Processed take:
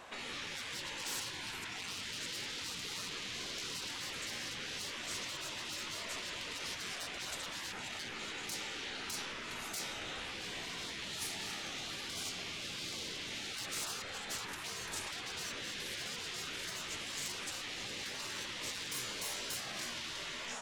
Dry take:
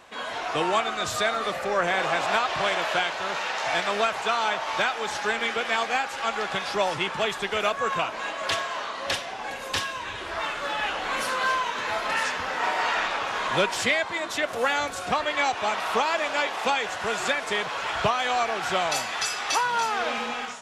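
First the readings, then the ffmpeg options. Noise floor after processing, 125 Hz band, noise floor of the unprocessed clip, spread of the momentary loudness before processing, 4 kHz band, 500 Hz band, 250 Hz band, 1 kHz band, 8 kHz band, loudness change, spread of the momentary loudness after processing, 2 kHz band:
-44 dBFS, -10.5 dB, -35 dBFS, 5 LU, -8.5 dB, -22.5 dB, -13.5 dB, -23.5 dB, -5.0 dB, -14.0 dB, 2 LU, -16.0 dB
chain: -af "aeval=exprs='(tanh(22.4*val(0)+0.25)-tanh(0.25))/22.4':c=same,afftfilt=real='re*lt(hypot(re,im),0.0316)':imag='im*lt(hypot(re,im),0.0316)':win_size=1024:overlap=0.75,volume=-1dB"

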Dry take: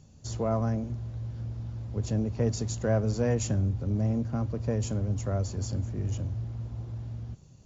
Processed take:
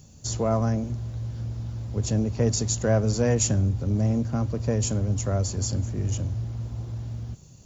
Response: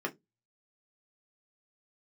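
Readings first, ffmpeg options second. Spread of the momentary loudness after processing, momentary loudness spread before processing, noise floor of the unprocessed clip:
11 LU, 10 LU, -53 dBFS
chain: -af "aemphasis=mode=production:type=50kf,volume=4dB"

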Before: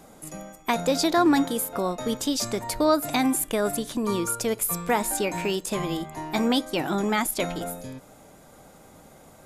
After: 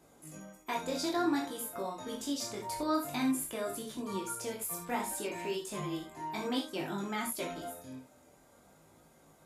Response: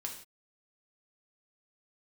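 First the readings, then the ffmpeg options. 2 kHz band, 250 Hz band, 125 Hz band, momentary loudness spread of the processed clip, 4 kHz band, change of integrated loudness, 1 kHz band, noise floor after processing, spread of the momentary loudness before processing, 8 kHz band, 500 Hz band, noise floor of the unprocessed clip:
-10.5 dB, -10.0 dB, -11.5 dB, 11 LU, -10.5 dB, -10.5 dB, -10.0 dB, -62 dBFS, 12 LU, -10.5 dB, -11.5 dB, -51 dBFS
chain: -filter_complex "[0:a]highpass=52,flanger=delay=17.5:depth=6.3:speed=0.55[a];[1:a]atrim=start_sample=2205,atrim=end_sample=3969[b];[a][b]afir=irnorm=-1:irlink=0,volume=-6.5dB"

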